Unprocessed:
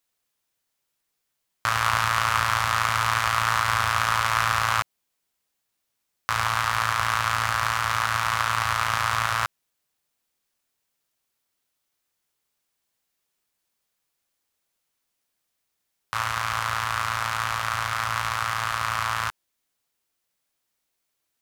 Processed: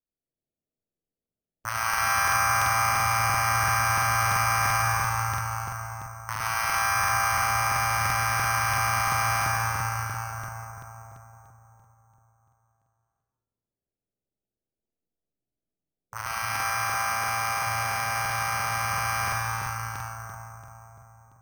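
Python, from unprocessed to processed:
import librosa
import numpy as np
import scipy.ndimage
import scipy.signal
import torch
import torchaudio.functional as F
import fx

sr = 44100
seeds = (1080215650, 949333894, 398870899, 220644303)

p1 = fx.wiener(x, sr, points=41)
p2 = fx.spec_gate(p1, sr, threshold_db=-20, keep='strong')
p3 = p2 + fx.echo_split(p2, sr, split_hz=1200.0, low_ms=177, high_ms=103, feedback_pct=52, wet_db=-10.0, dry=0)
p4 = fx.env_lowpass_down(p3, sr, base_hz=2800.0, full_db=-19.0)
p5 = fx.highpass(p4, sr, hz=120.0, slope=12, at=(16.42, 17.67))
p6 = fx.rev_freeverb(p5, sr, rt60_s=4.6, hf_ratio=0.7, predelay_ms=20, drr_db=-4.5)
p7 = fx.env_lowpass(p6, sr, base_hz=720.0, full_db=-19.0)
p8 = 10.0 ** (-16.5 / 20.0) * np.tanh(p7 / 10.0 ** (-16.5 / 20.0))
p9 = p7 + (p8 * 10.0 ** (-11.0 / 20.0))
p10 = np.repeat(scipy.signal.resample_poly(p9, 1, 6), 6)[:len(p9)]
p11 = fx.buffer_crackle(p10, sr, first_s=0.87, period_s=0.34, block=2048, kind='repeat')
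y = p11 * 10.0 ** (-7.5 / 20.0)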